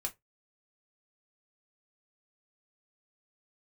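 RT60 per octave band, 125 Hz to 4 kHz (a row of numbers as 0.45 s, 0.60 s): 0.20 s, 0.15 s, 0.20 s, 0.15 s, 0.15 s, 0.15 s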